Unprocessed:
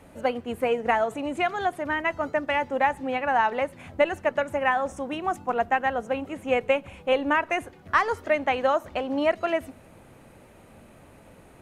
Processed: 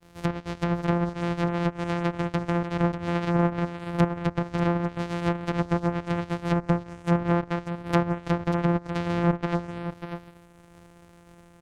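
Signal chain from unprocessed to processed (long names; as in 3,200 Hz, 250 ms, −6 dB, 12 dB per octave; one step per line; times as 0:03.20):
samples sorted by size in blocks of 256 samples
treble cut that deepens with the level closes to 1,400 Hz, closed at −19.5 dBFS
downward expander −48 dBFS
on a send: single-tap delay 592 ms −9 dB
on the sum: level −1.5 dB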